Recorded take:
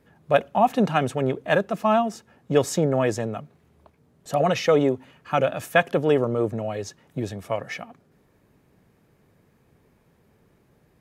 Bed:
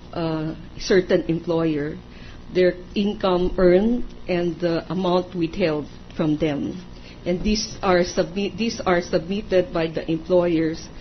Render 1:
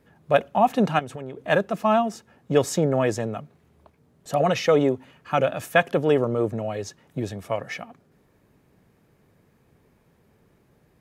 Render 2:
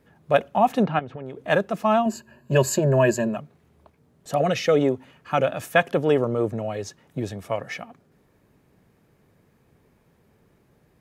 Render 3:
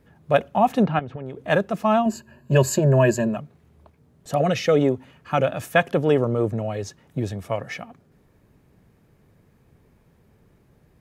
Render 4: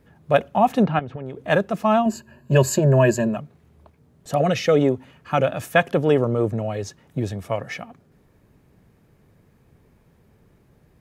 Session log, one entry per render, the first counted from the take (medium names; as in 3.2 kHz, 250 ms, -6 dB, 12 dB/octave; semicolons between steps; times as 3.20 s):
0.99–1.47 s: compression, threshold -31 dBFS
0.83–1.25 s: distance through air 290 m; 2.05–3.37 s: rippled EQ curve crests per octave 1.4, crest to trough 16 dB; 4.42–4.82 s: peaking EQ 970 Hz -13.5 dB 0.34 oct
bass shelf 130 Hz +8.5 dB
trim +1 dB